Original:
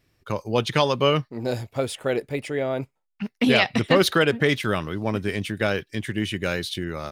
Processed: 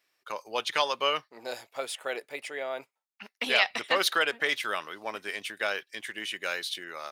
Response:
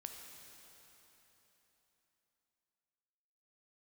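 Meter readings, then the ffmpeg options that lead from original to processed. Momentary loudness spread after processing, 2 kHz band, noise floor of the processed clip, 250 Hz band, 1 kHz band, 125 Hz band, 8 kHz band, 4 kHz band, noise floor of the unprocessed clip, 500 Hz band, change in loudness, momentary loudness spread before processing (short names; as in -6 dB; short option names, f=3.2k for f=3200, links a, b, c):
14 LU, -2.5 dB, -83 dBFS, -20.5 dB, -4.0 dB, under -30 dB, -2.5 dB, -2.5 dB, -74 dBFS, -10.5 dB, -6.0 dB, 11 LU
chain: -af "highpass=760,volume=-2.5dB"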